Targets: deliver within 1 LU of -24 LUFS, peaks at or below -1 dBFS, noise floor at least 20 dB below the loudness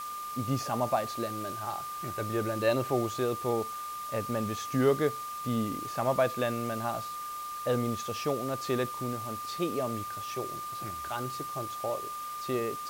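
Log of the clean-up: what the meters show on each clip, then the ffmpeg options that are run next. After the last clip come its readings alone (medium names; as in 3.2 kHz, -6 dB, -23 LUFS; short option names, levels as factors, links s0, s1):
steady tone 1.2 kHz; tone level -36 dBFS; noise floor -39 dBFS; noise floor target -52 dBFS; loudness -32.0 LUFS; peak level -14.5 dBFS; loudness target -24.0 LUFS
-> -af "bandreject=f=1200:w=30"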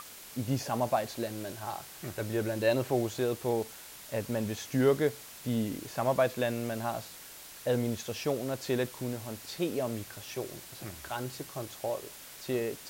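steady tone not found; noise floor -49 dBFS; noise floor target -53 dBFS
-> -af "afftdn=nr=6:nf=-49"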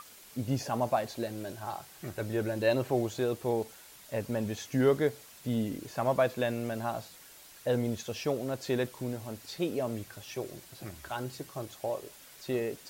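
noise floor -53 dBFS; loudness -33.0 LUFS; peak level -15.0 dBFS; loudness target -24.0 LUFS
-> -af "volume=2.82"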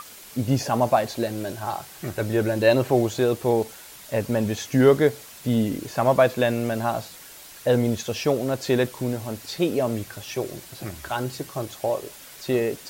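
loudness -24.0 LUFS; peak level -6.0 dBFS; noise floor -44 dBFS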